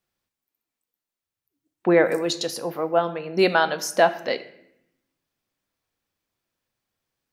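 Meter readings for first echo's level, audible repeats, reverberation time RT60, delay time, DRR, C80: no echo, no echo, 0.75 s, no echo, 11.0 dB, 17.0 dB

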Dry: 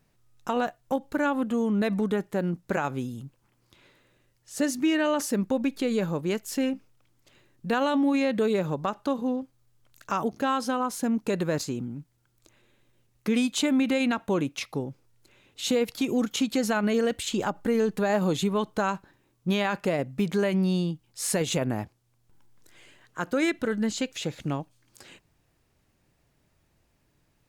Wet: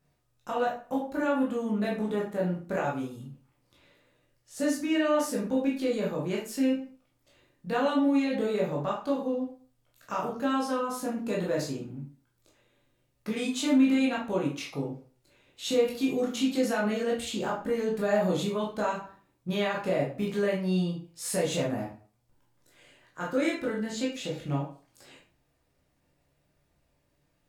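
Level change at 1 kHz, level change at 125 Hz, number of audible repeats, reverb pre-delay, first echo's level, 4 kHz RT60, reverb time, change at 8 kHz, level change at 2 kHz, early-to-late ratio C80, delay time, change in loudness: -2.5 dB, -3.0 dB, no echo, 13 ms, no echo, 0.35 s, 0.45 s, -4.5 dB, -3.0 dB, 11.0 dB, no echo, -2.0 dB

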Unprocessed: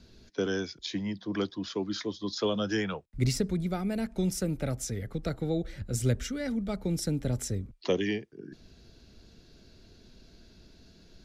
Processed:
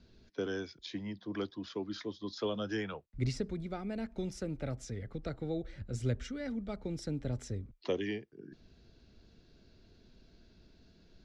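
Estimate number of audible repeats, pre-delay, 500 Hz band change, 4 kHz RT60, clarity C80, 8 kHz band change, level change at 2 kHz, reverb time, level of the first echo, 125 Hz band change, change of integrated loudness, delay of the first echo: no echo, no reverb, -6.0 dB, no reverb, no reverb, -14.0 dB, -6.5 dB, no reverb, no echo, -7.0 dB, -7.0 dB, no echo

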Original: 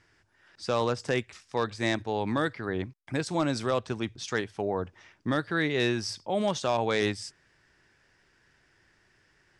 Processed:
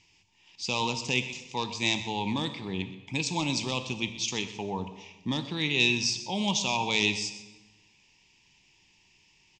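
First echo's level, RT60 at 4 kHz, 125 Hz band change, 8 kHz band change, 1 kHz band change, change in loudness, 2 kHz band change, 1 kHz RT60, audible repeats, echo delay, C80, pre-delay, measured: -15.5 dB, 0.95 s, -1.0 dB, +8.0 dB, -1.5 dB, +1.0 dB, +2.5 dB, 1.1 s, 1, 125 ms, 11.5 dB, 13 ms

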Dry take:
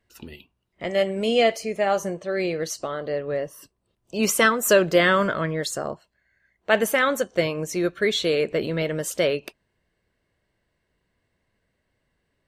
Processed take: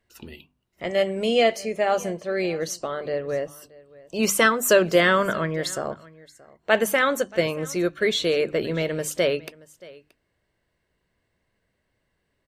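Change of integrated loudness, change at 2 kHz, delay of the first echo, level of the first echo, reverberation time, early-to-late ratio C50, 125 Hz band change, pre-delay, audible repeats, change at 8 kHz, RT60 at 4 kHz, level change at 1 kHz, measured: 0.0 dB, 0.0 dB, 627 ms, -22.0 dB, no reverb, no reverb, -1.0 dB, no reverb, 1, 0.0 dB, no reverb, 0.0 dB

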